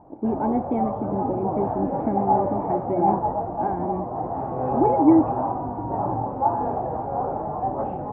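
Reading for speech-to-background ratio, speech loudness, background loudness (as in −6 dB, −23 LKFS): 0.5 dB, −25.5 LKFS, −26.0 LKFS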